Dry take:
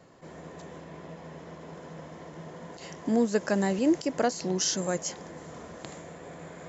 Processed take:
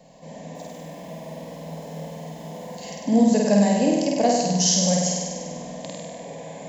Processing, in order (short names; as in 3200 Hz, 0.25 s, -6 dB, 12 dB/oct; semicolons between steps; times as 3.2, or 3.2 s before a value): fixed phaser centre 360 Hz, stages 6; 0.55–2.75 companded quantiser 6-bit; flutter echo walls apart 8.5 m, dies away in 1.4 s; gain +6 dB